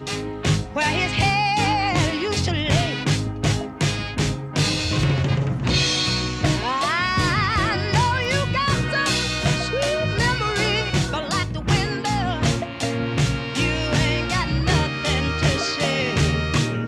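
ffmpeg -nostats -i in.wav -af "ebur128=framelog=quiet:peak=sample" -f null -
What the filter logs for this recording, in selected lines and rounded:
Integrated loudness:
  I:         -21.2 LUFS
  Threshold: -31.2 LUFS
Loudness range:
  LRA:         1.8 LU
  Threshold: -41.3 LUFS
  LRA low:   -22.2 LUFS
  LRA high:  -20.4 LUFS
Sample peak:
  Peak:       -5.0 dBFS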